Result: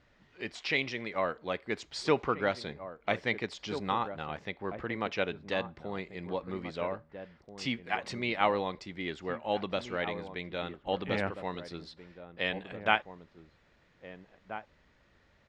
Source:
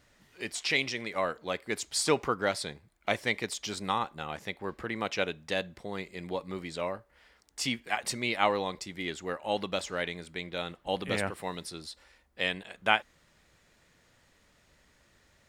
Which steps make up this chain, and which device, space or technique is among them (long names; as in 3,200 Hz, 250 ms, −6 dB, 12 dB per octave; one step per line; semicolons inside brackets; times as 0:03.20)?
shout across a valley (high-frequency loss of the air 180 metres; slap from a distant wall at 280 metres, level −10 dB)